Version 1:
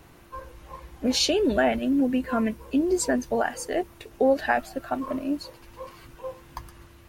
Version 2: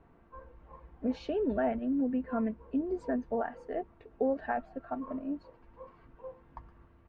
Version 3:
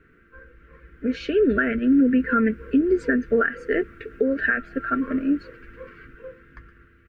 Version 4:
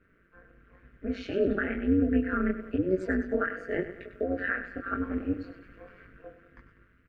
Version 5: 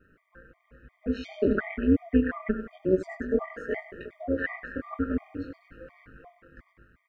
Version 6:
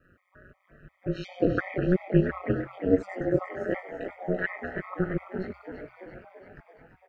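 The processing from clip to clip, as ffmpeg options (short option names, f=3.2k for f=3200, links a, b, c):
-af "lowpass=1.3k,aecho=1:1:4.4:0.32,volume=-8.5dB"
-af "firequalizer=gain_entry='entry(210,0);entry(440,4);entry(820,-29);entry(1400,14);entry(3700,3)':delay=0.05:min_phase=1,dynaudnorm=f=270:g=11:m=10.5dB,alimiter=limit=-14dB:level=0:latency=1:release=280,volume=3dB"
-af "flanger=delay=18.5:depth=4.9:speed=1,aecho=1:1:99|198|297|396:0.266|0.117|0.0515|0.0227,tremolo=f=190:d=0.788,volume=-2dB"
-af "afftfilt=real='re*gt(sin(2*PI*2.8*pts/sr)*(1-2*mod(floor(b*sr/1024/620),2)),0)':imag='im*gt(sin(2*PI*2.8*pts/sr)*(1-2*mod(floor(b*sr/1024/620),2)),0)':win_size=1024:overlap=0.75,volume=4dB"
-filter_complex "[0:a]aeval=exprs='val(0)*sin(2*PI*92*n/s)':c=same,asplit=2[a][b];[b]asplit=7[c][d][e][f][g][h][i];[c]adelay=337,afreqshift=65,volume=-10dB[j];[d]adelay=674,afreqshift=130,volume=-14.9dB[k];[e]adelay=1011,afreqshift=195,volume=-19.8dB[l];[f]adelay=1348,afreqshift=260,volume=-24.6dB[m];[g]adelay=1685,afreqshift=325,volume=-29.5dB[n];[h]adelay=2022,afreqshift=390,volume=-34.4dB[o];[i]adelay=2359,afreqshift=455,volume=-39.3dB[p];[j][k][l][m][n][o][p]amix=inputs=7:normalize=0[q];[a][q]amix=inputs=2:normalize=0,volume=2.5dB"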